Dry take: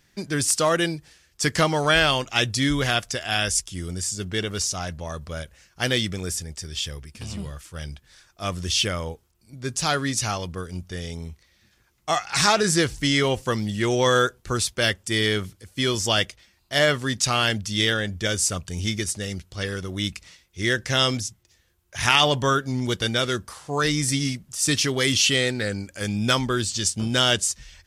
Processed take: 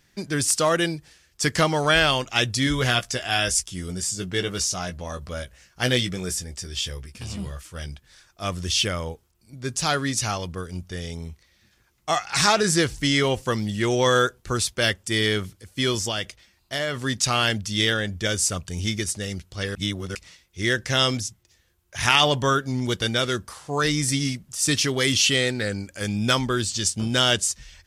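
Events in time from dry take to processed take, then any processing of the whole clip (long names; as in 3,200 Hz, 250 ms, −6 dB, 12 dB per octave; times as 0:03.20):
0:02.65–0:07.86: double-tracking delay 16 ms −7 dB
0:15.98–0:17.02: downward compressor 4 to 1, threshold −23 dBFS
0:19.75–0:20.15: reverse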